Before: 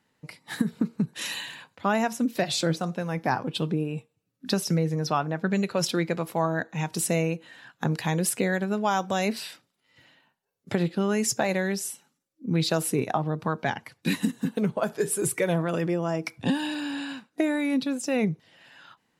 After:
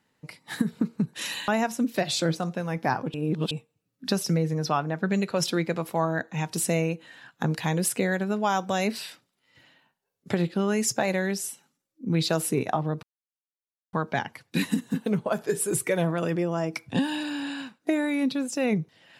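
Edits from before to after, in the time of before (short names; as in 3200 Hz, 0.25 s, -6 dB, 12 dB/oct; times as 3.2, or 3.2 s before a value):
1.48–1.89 cut
3.55–3.92 reverse
13.44 insert silence 0.90 s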